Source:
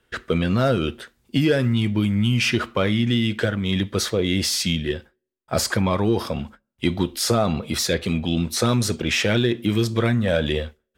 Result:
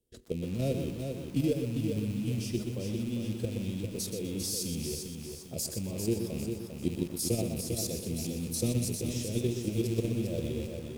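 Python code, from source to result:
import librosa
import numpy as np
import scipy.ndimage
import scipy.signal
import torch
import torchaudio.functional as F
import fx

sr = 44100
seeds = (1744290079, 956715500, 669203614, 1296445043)

y = fx.rattle_buzz(x, sr, strikes_db=-27.0, level_db=-13.0)
y = fx.level_steps(y, sr, step_db=9)
y = fx.curve_eq(y, sr, hz=(240.0, 490.0, 1400.0, 4700.0, 10000.0), db=(0, -1, -29, -4, 6))
y = fx.echo_feedback(y, sr, ms=399, feedback_pct=40, wet_db=-6.0)
y = fx.echo_crushed(y, sr, ms=124, feedback_pct=35, bits=7, wet_db=-7.0)
y = y * 10.0 ** (-7.0 / 20.0)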